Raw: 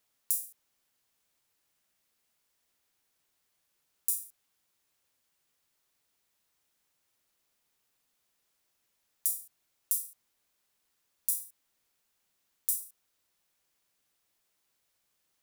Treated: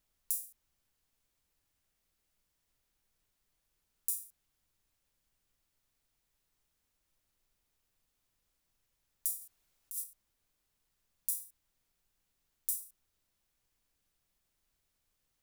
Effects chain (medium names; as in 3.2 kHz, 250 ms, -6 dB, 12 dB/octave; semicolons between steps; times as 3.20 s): 9.41–10.04 s: compressor with a negative ratio -35 dBFS, ratio -1; added noise brown -80 dBFS; trim -4.5 dB